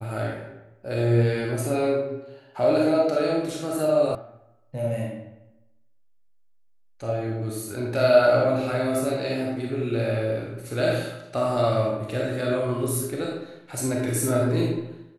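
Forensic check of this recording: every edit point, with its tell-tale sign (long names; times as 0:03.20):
0:04.15: cut off before it has died away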